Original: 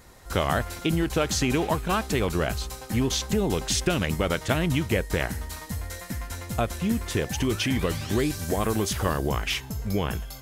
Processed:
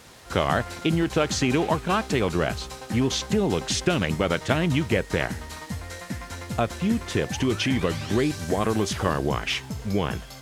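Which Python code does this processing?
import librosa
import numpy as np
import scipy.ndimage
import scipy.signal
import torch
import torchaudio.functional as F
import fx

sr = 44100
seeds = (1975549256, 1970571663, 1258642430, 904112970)

p1 = scipy.signal.sosfilt(scipy.signal.butter(2, 92.0, 'highpass', fs=sr, output='sos'), x)
p2 = fx.quant_dither(p1, sr, seeds[0], bits=6, dither='triangular')
p3 = p1 + F.gain(torch.from_numpy(p2), -10.5).numpy()
y = fx.air_absorb(p3, sr, metres=52.0)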